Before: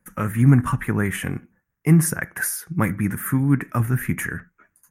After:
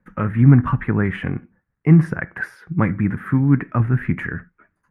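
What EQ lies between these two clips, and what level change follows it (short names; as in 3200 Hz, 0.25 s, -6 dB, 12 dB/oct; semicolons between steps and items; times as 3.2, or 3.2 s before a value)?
LPF 9300 Hz 12 dB/oct; air absorption 400 m; +3.5 dB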